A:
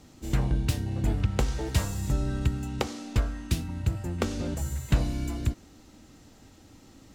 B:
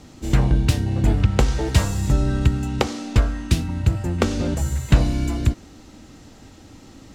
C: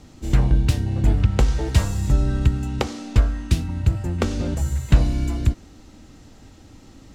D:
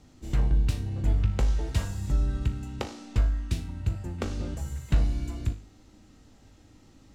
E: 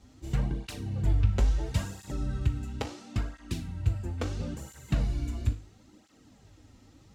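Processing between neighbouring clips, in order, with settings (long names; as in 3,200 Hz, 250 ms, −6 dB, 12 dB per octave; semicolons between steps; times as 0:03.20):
high-shelf EQ 12,000 Hz −10.5 dB; level +8.5 dB
low-shelf EQ 81 Hz +7 dB; level −3.5 dB
tuned comb filter 51 Hz, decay 0.43 s, harmonics all, mix 70%; level −3.5 dB
through-zero flanger with one copy inverted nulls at 0.74 Hz, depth 6.8 ms; level +2 dB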